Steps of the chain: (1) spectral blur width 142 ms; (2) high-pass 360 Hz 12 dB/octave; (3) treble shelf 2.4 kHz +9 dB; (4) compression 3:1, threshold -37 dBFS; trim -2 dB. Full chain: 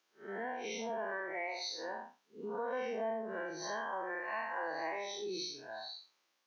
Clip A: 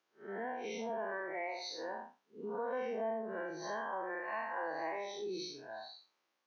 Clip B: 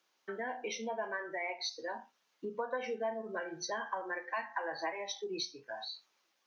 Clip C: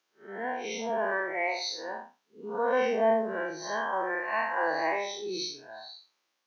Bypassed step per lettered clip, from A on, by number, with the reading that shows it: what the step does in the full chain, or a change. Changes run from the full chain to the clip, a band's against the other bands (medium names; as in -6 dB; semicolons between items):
3, 4 kHz band -4.5 dB; 1, 4 kHz band +1.5 dB; 4, mean gain reduction 6.5 dB